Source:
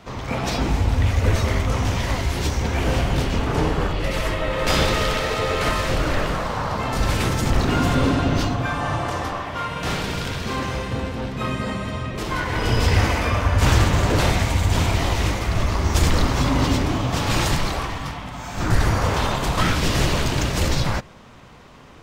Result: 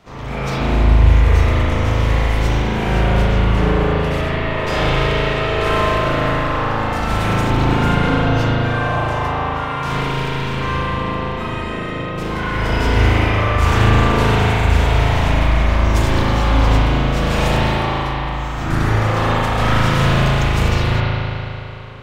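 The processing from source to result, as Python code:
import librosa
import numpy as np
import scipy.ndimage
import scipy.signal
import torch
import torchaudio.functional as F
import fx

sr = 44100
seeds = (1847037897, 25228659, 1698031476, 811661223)

y = fx.high_shelf(x, sr, hz=fx.line((4.2, 6300.0), (5.63, 9000.0)), db=-8.5, at=(4.2, 5.63), fade=0.02)
y = fx.rev_spring(y, sr, rt60_s=3.0, pass_ms=(37,), chirp_ms=70, drr_db=-9.5)
y = y * 10.0 ** (-5.0 / 20.0)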